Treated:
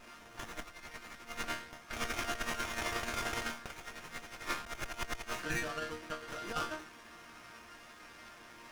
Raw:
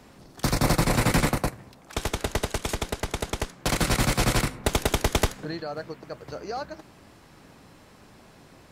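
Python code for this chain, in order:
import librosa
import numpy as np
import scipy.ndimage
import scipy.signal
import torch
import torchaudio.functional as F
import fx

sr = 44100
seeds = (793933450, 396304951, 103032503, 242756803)

y = fx.high_shelf(x, sr, hz=4600.0, db=9.5)
y = fx.resonator_bank(y, sr, root=58, chord='sus4', decay_s=0.36)
y = fx.over_compress(y, sr, threshold_db=-49.0, ratio=-0.5)
y = fx.band_shelf(y, sr, hz=2600.0, db=14.0, octaves=2.8)
y = fx.running_max(y, sr, window=9)
y = F.gain(torch.from_numpy(y), 3.5).numpy()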